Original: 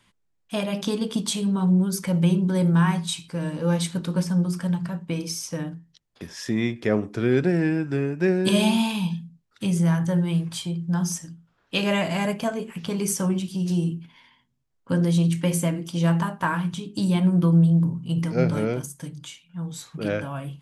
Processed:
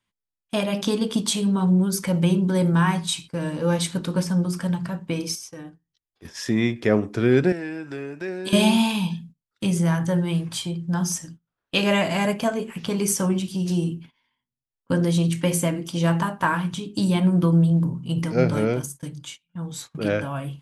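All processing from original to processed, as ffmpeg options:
-filter_complex "[0:a]asettb=1/sr,asplit=3[a][b][c];[a]atrim=end=5.354[d];[b]atrim=start=5.35:end=6.25,asetpts=PTS-STARTPTS,afade=t=in:d=0.004:c=qsin,afade=t=out:st=0.896:d=0.004:c=qsin,aecho=1:1:2.6:0.42,atrim=end_sample=39690,acompressor=threshold=-40dB:ratio=3:attack=3.2:release=140:knee=1:detection=peak[e];[c]atrim=start=6.246[f];[d][e]acrossfade=d=0.004:c1=hsin:c2=qsin[g];[g][f]acrossfade=d=0.004:c1=qsin:c2=hsin,asettb=1/sr,asplit=3[h][i][j];[h]atrim=end=7.524[k];[i]atrim=start=7.52:end=8.53,asetpts=PTS-STARTPTS,afade=t=in:d=0.004:c=qsin,afade=t=out:st=1.006:d=0.004:c=qsin,highpass=f=450:p=1,equalizer=f=3.8k:w=4.1:g=3,acompressor=threshold=-35dB:ratio=2:attack=3.2:release=140:knee=1:detection=peak[l];[j]atrim=start=8.526[m];[k][l]acrossfade=d=0.004:c1=hsin:c2=qsin[n];[n][m]acrossfade=d=0.004:c1=qsin:c2=hsin,agate=range=-20dB:threshold=-41dB:ratio=16:detection=peak,equalizer=f=170:t=o:w=0.26:g=-4,volume=3dB"

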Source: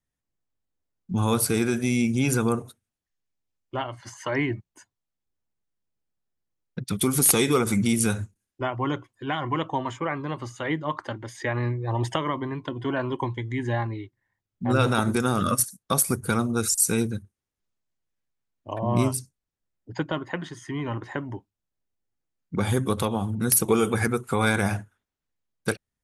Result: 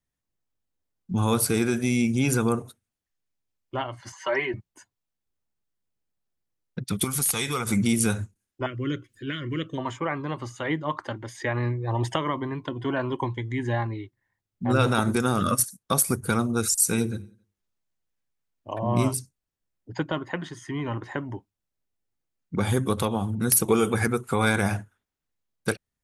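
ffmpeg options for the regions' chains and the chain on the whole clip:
-filter_complex "[0:a]asettb=1/sr,asplit=3[a][b][c];[a]atrim=end=4.124[d];[b]atrim=start=4.12:end=4.54,asetpts=PTS-STARTPTS,afade=t=in:d=0.004:c=qsin,afade=t=out:st=0.416:d=0.004:c=qsin,acrossover=split=310 6300:gain=0.126 1 0.251[e][f][g];[e][f][g]amix=inputs=3:normalize=0,aecho=1:1:5.2:0.76,atrim=end_sample=18522[h];[c]atrim=start=4.536[i];[d][h]acrossfade=d=0.004:c1=hsin:c2=qsin[j];[j][i]acrossfade=d=0.004:c1=qsin:c2=hsin,asettb=1/sr,asplit=3[k][l][m];[k]atrim=end=7.044[n];[l]atrim=start=7.04:end=7.69,asetpts=PTS-STARTPTS,afade=t=in:d=0.004:c=qsin,afade=t=out:st=0.646:d=0.004:c=qsin,equalizer=f=330:w=0.81:g=-12,acompressor=threshold=-22dB:ratio=2.5:attack=3.2:release=140:knee=1:detection=peak[o];[m]atrim=start=7.686[p];[n][o]acrossfade=d=0.004:c1=hsin:c2=qsin[q];[q][p]acrossfade=d=0.004:c1=qsin:c2=hsin,asettb=1/sr,asplit=3[r][s][t];[r]atrim=end=8.664[u];[s]atrim=start=8.66:end=9.78,asetpts=PTS-STARTPTS,afade=t=in:d=0.004:c=qsin,afade=t=out:st=1.116:d=0.004:c=qsin,acompressor=mode=upward:threshold=-42dB:ratio=2.5:attack=3.2:release=140:knee=2.83:detection=peak,asuperstop=centerf=840:order=4:qfactor=0.74[v];[t]atrim=start=9.776[w];[u][v]acrossfade=d=0.004:c1=hsin:c2=qsin[x];[x][w]acrossfade=d=0.004:c1=qsin:c2=hsin,asettb=1/sr,asplit=3[y][z][aa];[y]atrim=end=16.894[ab];[z]atrim=start=16.89:end=19.14,asetpts=PTS-STARTPTS,afade=t=in:d=0.004:c=qsin,afade=t=out:st=2.246:d=0.004:c=qsin,bandreject=f=50:t=h:w=6,bandreject=f=100:t=h:w=6,bandreject=f=150:t=h:w=6,bandreject=f=200:t=h:w=6,bandreject=f=250:t=h:w=6,bandreject=f=300:t=h:w=6,bandreject=f=350:t=h:w=6,bandreject=f=400:t=h:w=6,bandreject=f=450:t=h:w=6,aecho=1:1:89|178|267:0.0668|0.0314|0.0148,atrim=end_sample=99225[ac];[aa]atrim=start=19.136[ad];[ab][ac]acrossfade=d=0.004:c1=hsin:c2=qsin[ae];[ae][ad]acrossfade=d=0.004:c1=qsin:c2=hsin"

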